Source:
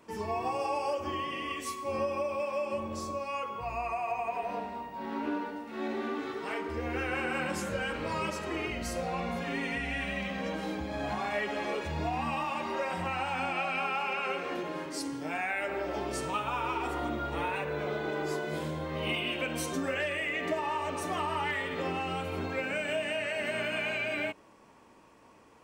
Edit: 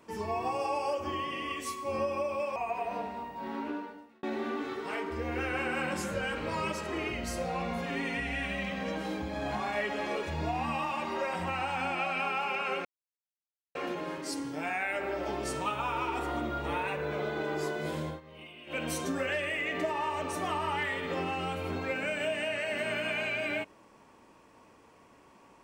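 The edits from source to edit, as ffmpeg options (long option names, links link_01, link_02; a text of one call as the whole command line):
ffmpeg -i in.wav -filter_complex "[0:a]asplit=6[link_01][link_02][link_03][link_04][link_05][link_06];[link_01]atrim=end=2.562[link_07];[link_02]atrim=start=4.138:end=5.81,asetpts=PTS-STARTPTS,afade=type=out:start_time=0.922:duration=0.75[link_08];[link_03]atrim=start=5.81:end=14.43,asetpts=PTS-STARTPTS,afade=type=in:duration=0.004:curve=hsin,afade=type=out:start_time=8.616:duration=0.004:curve=hsin,apad=pad_dur=0.9[link_09];[link_04]atrim=start=14.43:end=18.89,asetpts=PTS-STARTPTS,afade=type=in:duration=0.004:curve=hsin,afade=type=out:start_time=4.33:duration=0.13:silence=0.141254[link_10];[link_05]atrim=start=18.89:end=19.34,asetpts=PTS-STARTPTS,volume=-17dB[link_11];[link_06]atrim=start=19.34,asetpts=PTS-STARTPTS,afade=type=in:duration=0.13:silence=0.141254[link_12];[link_08][link_09][link_10][link_11][link_12]concat=n=5:v=0:a=1[link_13];[link_07][link_13]acrossfade=duration=0.004:curve1=hsin:curve2=hsin" out.wav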